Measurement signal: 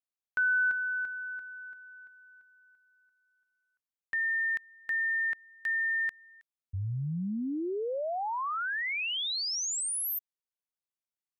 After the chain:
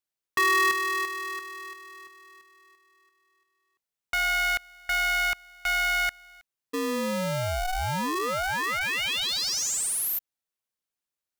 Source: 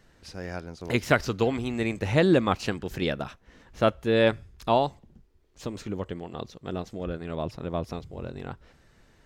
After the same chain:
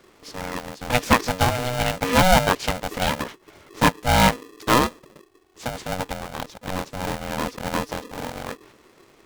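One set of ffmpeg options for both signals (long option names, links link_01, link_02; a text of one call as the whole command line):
ffmpeg -i in.wav -af "aeval=exprs='val(0)*sgn(sin(2*PI*370*n/s))':channel_layout=same,volume=4.5dB" out.wav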